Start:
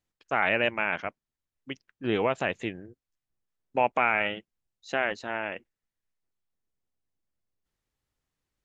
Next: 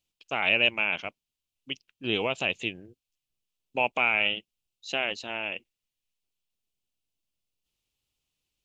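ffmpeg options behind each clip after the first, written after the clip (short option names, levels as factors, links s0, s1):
-af "highshelf=f=2200:t=q:w=3:g=7,volume=0.708"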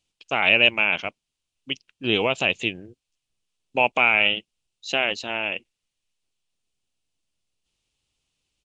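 -af "aresample=22050,aresample=44100,volume=2"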